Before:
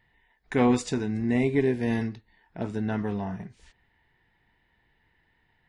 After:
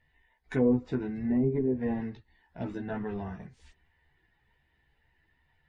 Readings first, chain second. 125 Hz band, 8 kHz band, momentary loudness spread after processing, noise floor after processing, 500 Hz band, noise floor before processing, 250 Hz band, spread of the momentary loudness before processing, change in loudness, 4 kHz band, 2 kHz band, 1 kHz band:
-4.0 dB, n/a, 14 LU, -72 dBFS, -3.5 dB, -69 dBFS, -3.0 dB, 13 LU, -3.5 dB, under -10 dB, -9.0 dB, -9.5 dB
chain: bin magnitudes rounded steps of 15 dB; treble ducked by the level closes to 490 Hz, closed at -19.5 dBFS; chorus voices 6, 0.49 Hz, delay 14 ms, depth 2 ms

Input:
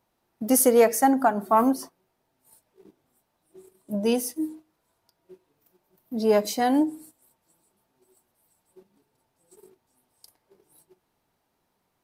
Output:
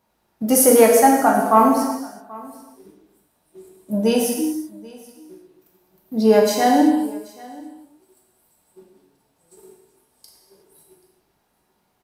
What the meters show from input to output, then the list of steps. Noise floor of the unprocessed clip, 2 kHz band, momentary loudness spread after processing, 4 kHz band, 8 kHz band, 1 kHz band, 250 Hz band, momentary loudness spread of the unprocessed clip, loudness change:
-75 dBFS, +7.0 dB, 18 LU, +7.0 dB, +6.5 dB, +7.5 dB, +6.5 dB, 15 LU, +6.0 dB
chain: on a send: echo 0.783 s -22.5 dB; on the sum: non-linear reverb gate 0.4 s falling, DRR -1.5 dB; gain +3 dB

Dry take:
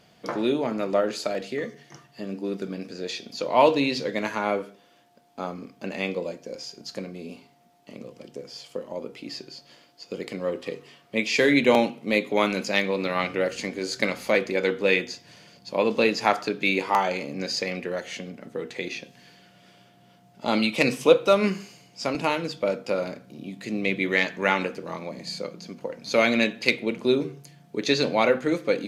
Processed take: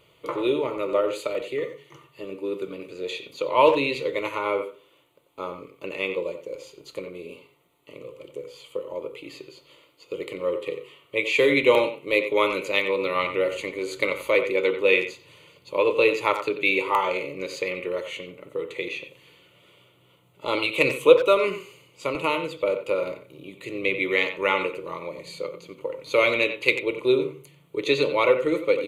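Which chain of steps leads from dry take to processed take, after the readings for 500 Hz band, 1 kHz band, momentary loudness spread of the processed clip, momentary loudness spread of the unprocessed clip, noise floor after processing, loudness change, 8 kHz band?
+2.0 dB, 0.0 dB, 18 LU, 16 LU, -60 dBFS, +1.0 dB, -6.0 dB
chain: fixed phaser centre 1100 Hz, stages 8; speakerphone echo 90 ms, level -9 dB; gain +3 dB

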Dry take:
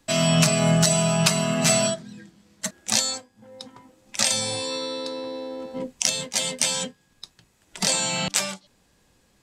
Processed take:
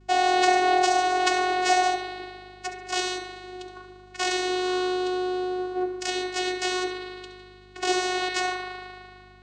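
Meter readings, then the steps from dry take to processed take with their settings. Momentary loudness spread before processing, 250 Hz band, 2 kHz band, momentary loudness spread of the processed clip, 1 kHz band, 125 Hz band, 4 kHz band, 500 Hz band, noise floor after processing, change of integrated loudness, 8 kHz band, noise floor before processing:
15 LU, -3.5 dB, +3.0 dB, 19 LU, +9.5 dB, -26.0 dB, -4.5 dB, +0.5 dB, -50 dBFS, -2.5 dB, -12.0 dB, -64 dBFS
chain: high shelf 5400 Hz -8 dB; spring tank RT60 2.1 s, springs 37 ms, chirp 80 ms, DRR 2.5 dB; vocoder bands 8, saw 366 Hz; hum 50 Hz, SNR 28 dB; on a send: flutter echo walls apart 11.8 m, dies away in 0.36 s

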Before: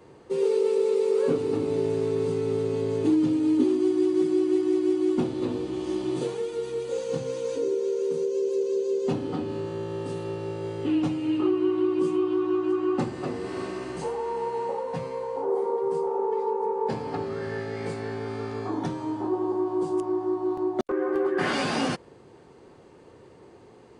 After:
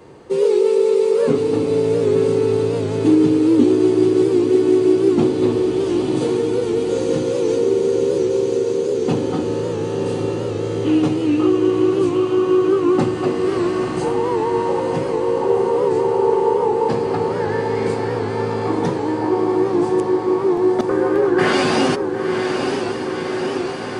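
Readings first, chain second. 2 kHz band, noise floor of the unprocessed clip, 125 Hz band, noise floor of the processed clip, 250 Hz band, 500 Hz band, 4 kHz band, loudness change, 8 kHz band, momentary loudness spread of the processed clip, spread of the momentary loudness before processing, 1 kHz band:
+9.5 dB, -51 dBFS, +10.0 dB, -24 dBFS, +9.0 dB, +9.5 dB, +9.5 dB, +9.0 dB, n/a, 7 LU, 9 LU, +9.5 dB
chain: diffused feedback echo 0.962 s, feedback 77%, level -6 dB; record warp 78 rpm, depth 100 cents; gain +8 dB

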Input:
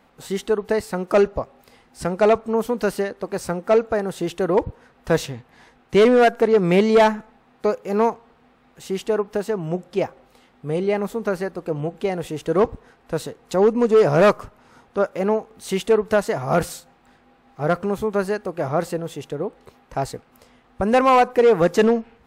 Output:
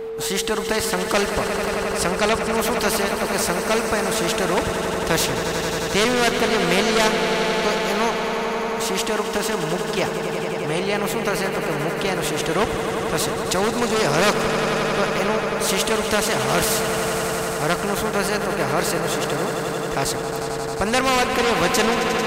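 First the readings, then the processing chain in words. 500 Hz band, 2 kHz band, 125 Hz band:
-2.5 dB, +7.5 dB, +0.5 dB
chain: whine 450 Hz -25 dBFS; swelling echo 89 ms, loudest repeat 5, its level -14 dB; spectral compressor 2:1

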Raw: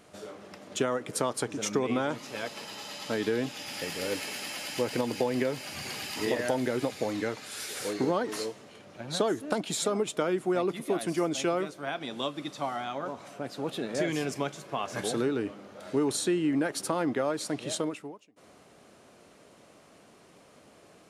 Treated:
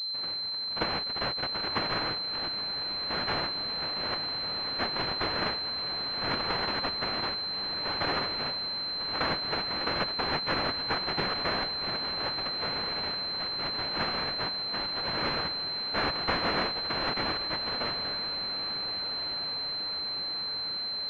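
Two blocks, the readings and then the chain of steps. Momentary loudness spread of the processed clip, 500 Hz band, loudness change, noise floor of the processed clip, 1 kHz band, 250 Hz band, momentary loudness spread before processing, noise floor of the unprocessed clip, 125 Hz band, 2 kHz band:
2 LU, -7.0 dB, +2.0 dB, -34 dBFS, +3.0 dB, -8.5 dB, 10 LU, -57 dBFS, -1.5 dB, +4.5 dB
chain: noise vocoder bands 1; diffused feedback echo 1.652 s, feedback 63%, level -11 dB; pulse-width modulation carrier 4100 Hz

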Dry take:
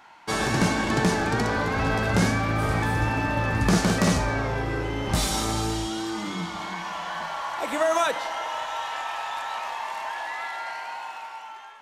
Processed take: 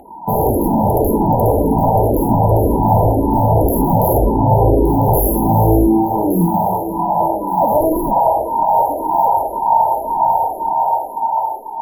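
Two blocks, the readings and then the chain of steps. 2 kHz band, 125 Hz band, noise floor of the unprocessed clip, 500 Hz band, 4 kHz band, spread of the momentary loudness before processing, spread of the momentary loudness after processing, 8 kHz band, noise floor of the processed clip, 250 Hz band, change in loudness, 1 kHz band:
under -40 dB, +11.0 dB, -41 dBFS, +13.0 dB, under -40 dB, 10 LU, 5 LU, 0.0 dB, -26 dBFS, +11.0 dB, +11.0 dB, +14.5 dB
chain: sine folder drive 13 dB, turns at -11.5 dBFS; FFT band-reject 1000–11000 Hz; on a send: thinning echo 1.169 s, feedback 34%, high-pass 440 Hz, level -8 dB; on the sum: endless phaser -1.9 Hz; gain +6.5 dB

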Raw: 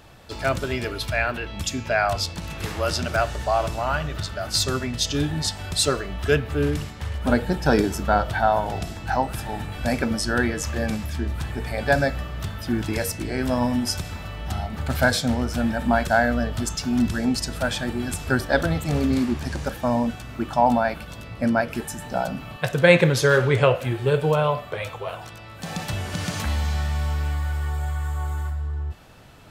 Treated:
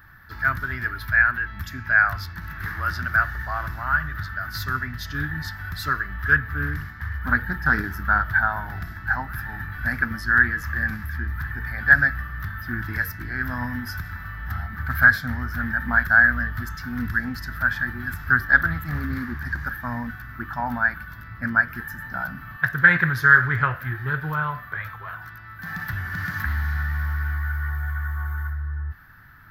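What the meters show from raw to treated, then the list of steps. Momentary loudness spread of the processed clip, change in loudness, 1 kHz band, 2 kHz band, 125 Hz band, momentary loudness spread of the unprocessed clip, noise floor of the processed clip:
16 LU, +1.0 dB, -2.0 dB, +8.5 dB, -2.5 dB, 11 LU, -40 dBFS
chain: EQ curve 100 Hz 0 dB, 320 Hz -10 dB, 530 Hz -22 dB, 1700 Hz +13 dB, 2600 Hz -14 dB, 4900 Hz -10 dB, 8800 Hz -24 dB, 13000 Hz +8 dB; Doppler distortion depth 0.14 ms; gain -1 dB

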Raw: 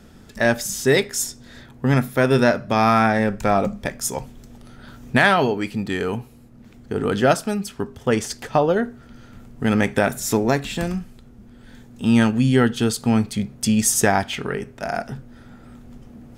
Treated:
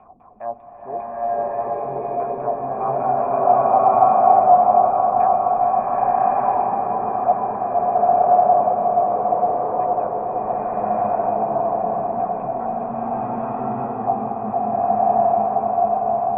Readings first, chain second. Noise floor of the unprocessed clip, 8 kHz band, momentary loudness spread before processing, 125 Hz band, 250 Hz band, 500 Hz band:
-47 dBFS, under -40 dB, 11 LU, -12.5 dB, -10.5 dB, +3.0 dB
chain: zero-crossing step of -26.5 dBFS; LFO low-pass saw down 5 Hz 210–3000 Hz; vocal tract filter a; on a send: repeats that get brighter 0.467 s, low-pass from 750 Hz, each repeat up 1 oct, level -3 dB; on the sum: bloom reverb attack 1.2 s, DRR -10.5 dB; gain -1 dB

